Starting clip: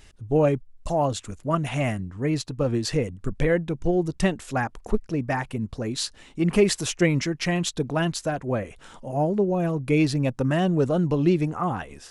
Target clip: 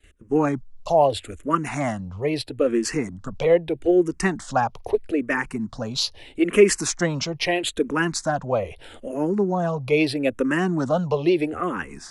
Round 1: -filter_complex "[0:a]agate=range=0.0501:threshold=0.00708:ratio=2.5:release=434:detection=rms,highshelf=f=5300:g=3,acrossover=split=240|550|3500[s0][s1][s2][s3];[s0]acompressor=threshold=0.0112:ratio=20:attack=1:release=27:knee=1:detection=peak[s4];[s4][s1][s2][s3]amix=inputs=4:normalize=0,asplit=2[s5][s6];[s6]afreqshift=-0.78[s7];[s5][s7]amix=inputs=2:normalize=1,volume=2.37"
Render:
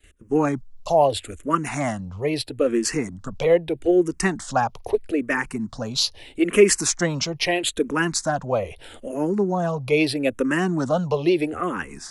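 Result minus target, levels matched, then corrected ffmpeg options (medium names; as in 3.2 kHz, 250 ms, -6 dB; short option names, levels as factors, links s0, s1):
8 kHz band +3.5 dB
-filter_complex "[0:a]agate=range=0.0501:threshold=0.00708:ratio=2.5:release=434:detection=rms,highshelf=f=5300:g=-3,acrossover=split=240|550|3500[s0][s1][s2][s3];[s0]acompressor=threshold=0.0112:ratio=20:attack=1:release=27:knee=1:detection=peak[s4];[s4][s1][s2][s3]amix=inputs=4:normalize=0,asplit=2[s5][s6];[s6]afreqshift=-0.78[s7];[s5][s7]amix=inputs=2:normalize=1,volume=2.37"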